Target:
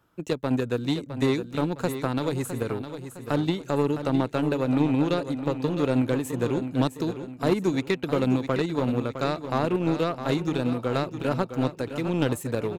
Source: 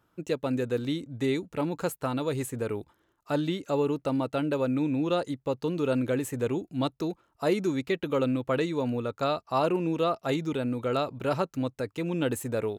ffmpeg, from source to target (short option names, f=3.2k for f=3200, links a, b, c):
-filter_complex "[0:a]acrossover=split=320[a][b];[b]acompressor=threshold=-36dB:ratio=2[c];[a][c]amix=inputs=2:normalize=0,asplit=2[d][e];[e]acrusher=bits=3:mix=0:aa=0.5,volume=-4dB[f];[d][f]amix=inputs=2:normalize=0,aecho=1:1:660|1320|1980|2640:0.316|0.13|0.0532|0.0218,volume=2.5dB"